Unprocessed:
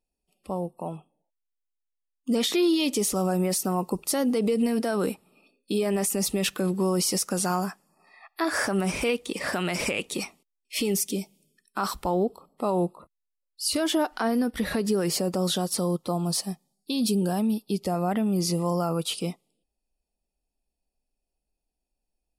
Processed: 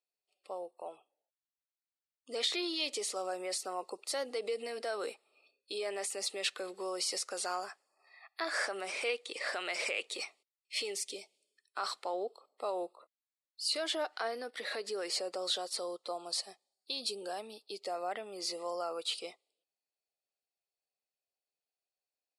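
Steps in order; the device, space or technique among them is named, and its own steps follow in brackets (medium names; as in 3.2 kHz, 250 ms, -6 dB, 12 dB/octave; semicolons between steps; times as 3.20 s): phone speaker on a table (cabinet simulation 450–8900 Hz, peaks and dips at 940 Hz -5 dB, 2.1 kHz +4 dB, 4.2 kHz +7 dB, 6 kHz -4 dB); trim -7 dB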